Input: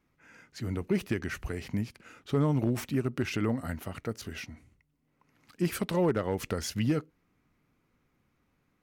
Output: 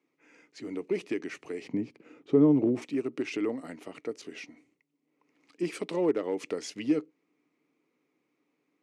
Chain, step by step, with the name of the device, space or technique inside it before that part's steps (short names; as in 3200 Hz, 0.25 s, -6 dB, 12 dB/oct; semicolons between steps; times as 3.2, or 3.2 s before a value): 1.67–2.82 tilt -3.5 dB/oct; television speaker (speaker cabinet 190–8800 Hz, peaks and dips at 210 Hz -8 dB, 300 Hz +9 dB, 440 Hz +7 dB, 1500 Hz -7 dB, 2300 Hz +5 dB); gain -4 dB